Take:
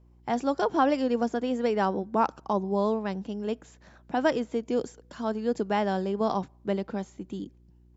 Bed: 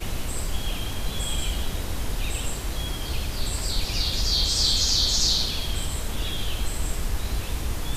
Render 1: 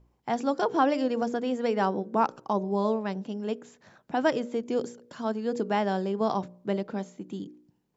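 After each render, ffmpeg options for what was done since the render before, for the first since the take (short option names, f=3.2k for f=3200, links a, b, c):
-af "bandreject=f=60:t=h:w=4,bandreject=f=120:t=h:w=4,bandreject=f=180:t=h:w=4,bandreject=f=240:t=h:w=4,bandreject=f=300:t=h:w=4,bandreject=f=360:t=h:w=4,bandreject=f=420:t=h:w=4,bandreject=f=480:t=h:w=4,bandreject=f=540:t=h:w=4,bandreject=f=600:t=h:w=4"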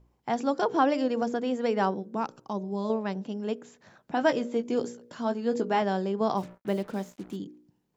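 -filter_complex "[0:a]asettb=1/sr,asplit=3[a][b][c];[a]atrim=end=1.944[d];[b]atrim=start=1.94:end=2.9,asetpts=PTS-STARTPTS,afade=t=in:d=0.004:c=qsin,afade=t=out:st=0.956:d=0.004:c=qsin,equalizer=f=850:w=0.34:g=-7.5[e];[c]atrim=start=2.896[f];[d][e]acrossfade=d=0.004:c1=hsin:c2=qsin[g];[g][f]acrossfade=d=0.004:c1=qsin:c2=hsin,asettb=1/sr,asplit=3[h][i][j];[h]atrim=end=4.154[k];[i]atrim=start=4.15:end=5.82,asetpts=PTS-STARTPTS,afade=t=in:d=0.004:c=qsin,afade=t=out:st=1.666:d=0.004:c=qsin,asplit=2[l][m];[m]adelay=17,volume=-7dB[n];[l][n]amix=inputs=2:normalize=0,atrim=end_sample=73647[o];[j]atrim=start=5.816[p];[k][o]acrossfade=d=0.004:c1=hsin:c2=qsin[q];[q][p]acrossfade=d=0.004:c1=qsin:c2=hsin,asplit=3[r][s][t];[r]afade=t=out:st=6.36:d=0.02[u];[s]acrusher=bits=7:mix=0:aa=0.5,afade=t=in:st=6.36:d=0.02,afade=t=out:st=7.35:d=0.02[v];[t]afade=t=in:st=7.35:d=0.02[w];[u][v][w]amix=inputs=3:normalize=0"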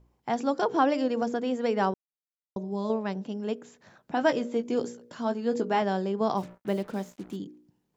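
-filter_complex "[0:a]asplit=3[a][b][c];[a]atrim=end=1.94,asetpts=PTS-STARTPTS,afade=t=out:st=1.936:d=0.004:c=hsin[d];[b]atrim=start=1.94:end=2.56,asetpts=PTS-STARTPTS,volume=0[e];[c]atrim=start=2.56,asetpts=PTS-STARTPTS,afade=t=in:d=0.004:c=hsin[f];[d][e][f]concat=n=3:v=0:a=1"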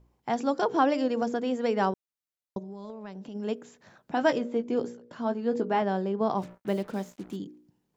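-filter_complex "[0:a]asplit=3[a][b][c];[a]afade=t=out:st=2.58:d=0.02[d];[b]acompressor=threshold=-37dB:ratio=10:attack=3.2:release=140:knee=1:detection=peak,afade=t=in:st=2.58:d=0.02,afade=t=out:st=3.34:d=0.02[e];[c]afade=t=in:st=3.34:d=0.02[f];[d][e][f]amix=inputs=3:normalize=0,asettb=1/sr,asplit=3[g][h][i];[g]atrim=end=4.384[j];[h]atrim=start=4.38:end=6.42,asetpts=PTS-STARTPTS,afade=t=in:d=0.004:c=qsin,afade=t=out:st=2.036:d=0.004:c=qsin,lowpass=f=2.4k:p=1[k];[i]atrim=start=6.416[l];[j][k]acrossfade=d=0.004:c1=hsin:c2=qsin[m];[m][l]acrossfade=d=0.004:c1=qsin:c2=hsin"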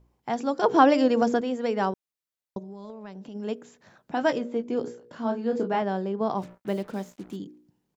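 -filter_complex "[0:a]asplit=3[a][b][c];[a]afade=t=out:st=4.85:d=0.02[d];[b]asplit=2[e][f];[f]adelay=31,volume=-4.5dB[g];[e][g]amix=inputs=2:normalize=0,afade=t=in:st=4.85:d=0.02,afade=t=out:st=5.75:d=0.02[h];[c]afade=t=in:st=5.75:d=0.02[i];[d][h][i]amix=inputs=3:normalize=0,asplit=3[j][k][l];[j]atrim=end=0.642[m];[k]atrim=start=0.638:end=1.412,asetpts=PTS-STARTPTS,volume=6dB[n];[l]atrim=start=1.408[o];[m][n]acrossfade=d=0.004:c1=hsin:c2=hsin[p];[p][o]acrossfade=d=0.004:c1=hsin:c2=hsin"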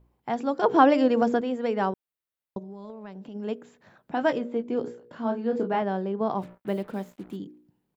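-af "equalizer=f=6.1k:t=o:w=0.97:g=-9"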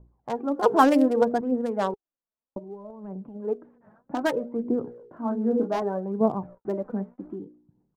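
-filter_complex "[0:a]acrossover=split=1300[a][b];[a]aphaser=in_gain=1:out_gain=1:delay=4.8:decay=0.57:speed=0.64:type=triangular[c];[b]acrusher=bits=4:mix=0:aa=0.5[d];[c][d]amix=inputs=2:normalize=0"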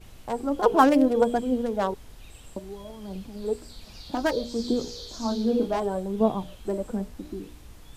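-filter_complex "[1:a]volume=-19dB[a];[0:a][a]amix=inputs=2:normalize=0"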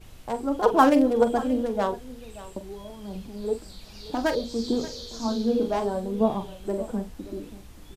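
-filter_complex "[0:a]asplit=2[a][b];[b]adelay=44,volume=-11dB[c];[a][c]amix=inputs=2:normalize=0,aecho=1:1:580:0.141"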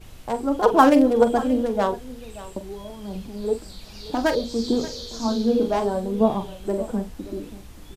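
-af "volume=3.5dB,alimiter=limit=-3dB:level=0:latency=1"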